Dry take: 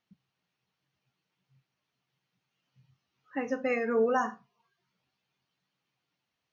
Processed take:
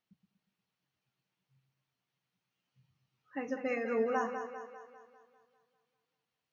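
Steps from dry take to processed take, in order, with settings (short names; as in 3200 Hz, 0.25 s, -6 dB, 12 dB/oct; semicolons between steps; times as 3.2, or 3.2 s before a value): split-band echo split 300 Hz, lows 0.119 s, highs 0.199 s, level -8 dB; gain -5.5 dB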